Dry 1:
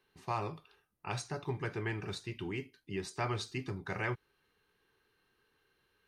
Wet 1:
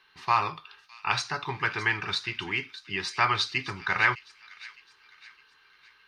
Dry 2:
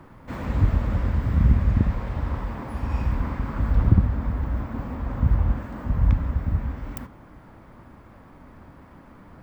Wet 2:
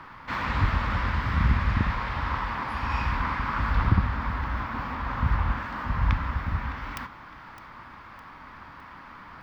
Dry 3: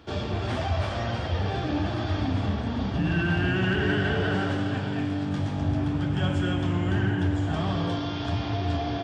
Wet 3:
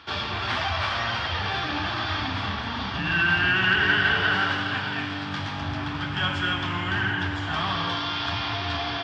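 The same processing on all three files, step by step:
band shelf 2200 Hz +15.5 dB 3 oct; thin delay 0.61 s, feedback 44%, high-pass 2900 Hz, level -13.5 dB; normalise peaks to -9 dBFS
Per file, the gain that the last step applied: 0.0, -5.0, -6.0 dB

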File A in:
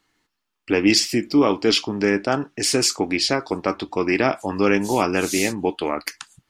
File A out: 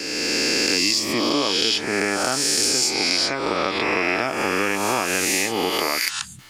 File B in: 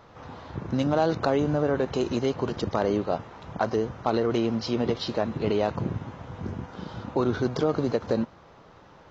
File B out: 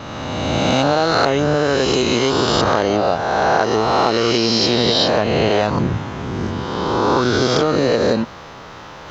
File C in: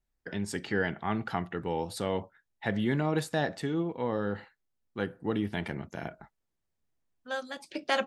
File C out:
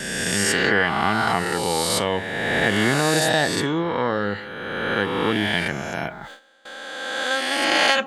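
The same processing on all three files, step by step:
spectral swells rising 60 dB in 2.03 s; gate with hold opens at -41 dBFS; reverse; upward compressor, threshold -39 dBFS; reverse; tilt shelf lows -4.5 dB, about 1200 Hz; compressor 6:1, threshold -22 dBFS; normalise peaks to -1.5 dBFS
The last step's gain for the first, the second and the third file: +4.0, +11.0, +9.0 dB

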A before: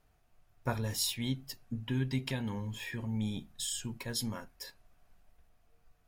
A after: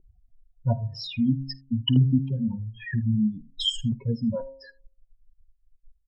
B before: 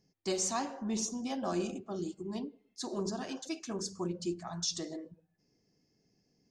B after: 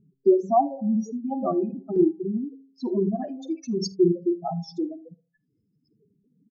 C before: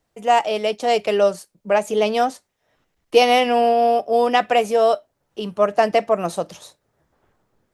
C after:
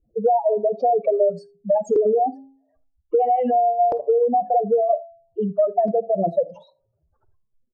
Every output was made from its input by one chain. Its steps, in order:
spectral contrast raised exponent 3.5; LFO low-pass saw up 0.51 Hz 370–3300 Hz; limiter -12.5 dBFS; bell 5000 Hz +14.5 dB 0.32 oct; early reflections 52 ms -13 dB, 78 ms -15 dB; reverb removal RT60 1.9 s; tremolo triangle 1.1 Hz, depth 40%; compressor, threshold -23 dBFS; de-hum 134.8 Hz, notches 8; normalise peaks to -9 dBFS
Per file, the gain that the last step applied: +15.5, +13.5, +7.5 dB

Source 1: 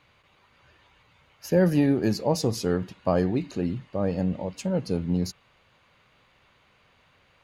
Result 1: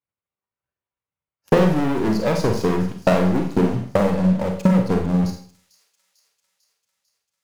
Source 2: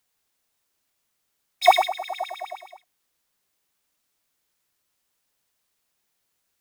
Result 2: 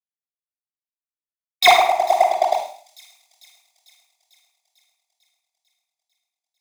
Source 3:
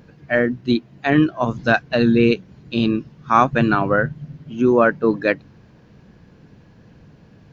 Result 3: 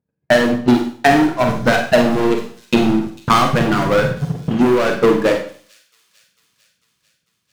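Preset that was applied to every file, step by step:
HPF 45 Hz 12 dB/oct; gate -38 dBFS, range -17 dB; high shelf 2600 Hz -11.5 dB; sample leveller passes 5; in parallel at +2 dB: limiter -13 dBFS; on the sum: transient shaper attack +11 dB, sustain -7 dB; on a send: thin delay 0.447 s, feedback 63%, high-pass 5400 Hz, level -14 dB; on the sum: Schroeder reverb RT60 0.48 s, combs from 33 ms, DRR 3 dB; gain -14.5 dB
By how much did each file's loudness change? +6.0, +6.0, +3.0 LU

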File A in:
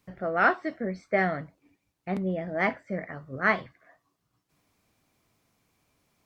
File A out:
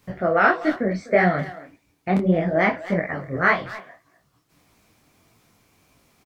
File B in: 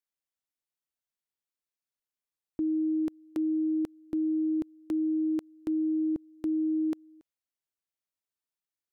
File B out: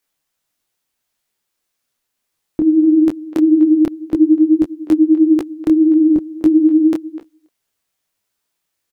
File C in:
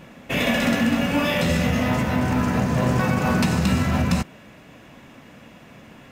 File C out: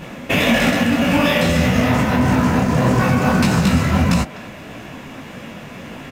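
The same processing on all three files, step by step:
compressor 2.5:1, threshold -27 dBFS; speakerphone echo 0.25 s, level -15 dB; detuned doubles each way 58 cents; normalise peaks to -3 dBFS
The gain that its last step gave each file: +14.5, +21.5, +15.0 dB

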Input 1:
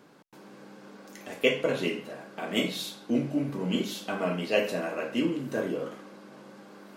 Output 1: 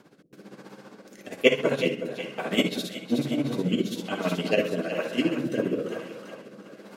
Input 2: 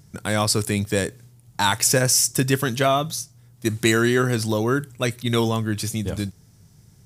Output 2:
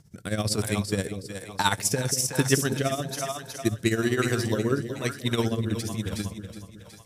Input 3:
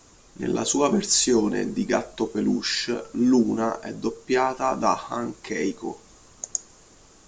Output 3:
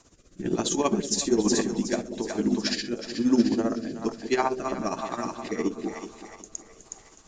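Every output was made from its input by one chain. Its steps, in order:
tremolo 15 Hz, depth 74%; split-band echo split 520 Hz, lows 0.187 s, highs 0.368 s, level -8 dB; rotary speaker horn 1.1 Hz; match loudness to -27 LUFS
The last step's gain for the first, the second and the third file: +7.0, -0.5, +1.5 dB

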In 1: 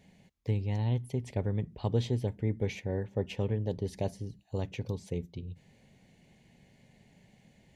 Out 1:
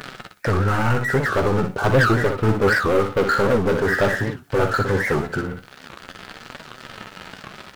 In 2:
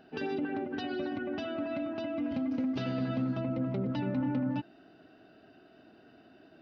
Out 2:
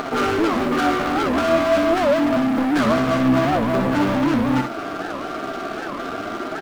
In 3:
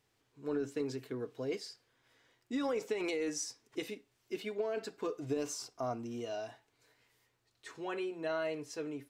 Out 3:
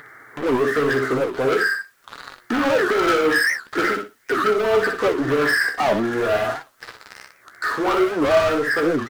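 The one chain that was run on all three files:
nonlinear frequency compression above 1100 Hz 4:1; HPF 460 Hz 6 dB/oct; sample leveller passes 5; upward compressor, threshold -29 dBFS; requantised 12-bit, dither triangular; on a send: feedback echo 61 ms, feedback 19%, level -6 dB; on the sum: flange 0.45 Hz, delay 6.7 ms, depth 8.8 ms, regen +52%; record warp 78 rpm, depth 250 cents; match loudness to -20 LUFS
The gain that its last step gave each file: +11.5, +13.0, +12.0 dB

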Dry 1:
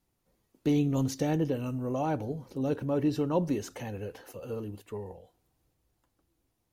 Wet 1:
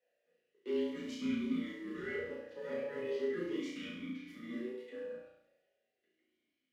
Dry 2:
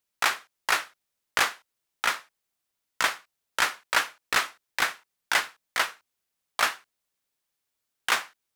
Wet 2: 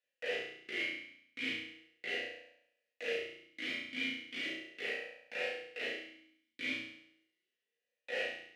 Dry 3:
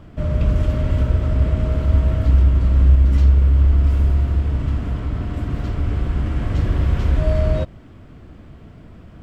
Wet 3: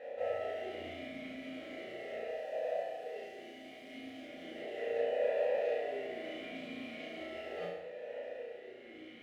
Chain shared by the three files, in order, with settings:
tremolo 1.1 Hz, depth 31%; low shelf 480 Hz -10.5 dB; limiter -21 dBFS; reverse; compressor 10:1, threshold -36 dBFS; reverse; ring modulator 700 Hz; modulation noise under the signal 19 dB; dynamic EQ 630 Hz, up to +3 dB, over -50 dBFS, Q 4; on a send: flutter echo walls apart 5.9 m, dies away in 0.71 s; on the sum: shoebox room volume 150 m³, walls furnished, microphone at 1.9 m; vowel sweep e-i 0.37 Hz; gain +11 dB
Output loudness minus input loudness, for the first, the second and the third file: -8.5, -12.0, -21.0 LU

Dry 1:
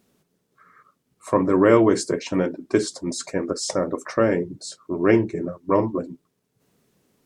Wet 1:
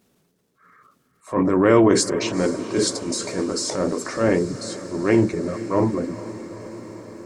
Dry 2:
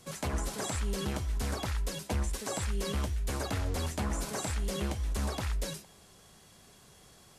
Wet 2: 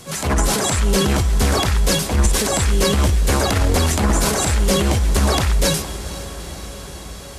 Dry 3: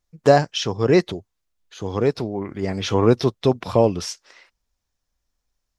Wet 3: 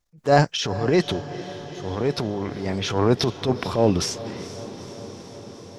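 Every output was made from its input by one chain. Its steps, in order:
transient shaper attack -9 dB, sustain +7 dB; diffused feedback echo 0.457 s, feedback 74%, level -15 dB; normalise peaks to -3 dBFS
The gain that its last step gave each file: +1.0, +16.5, -1.0 dB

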